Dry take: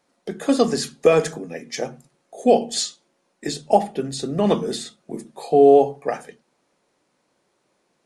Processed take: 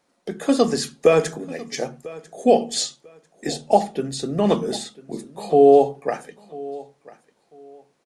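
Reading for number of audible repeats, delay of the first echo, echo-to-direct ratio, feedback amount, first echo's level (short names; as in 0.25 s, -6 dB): 2, 0.995 s, -20.0 dB, 23%, -20.0 dB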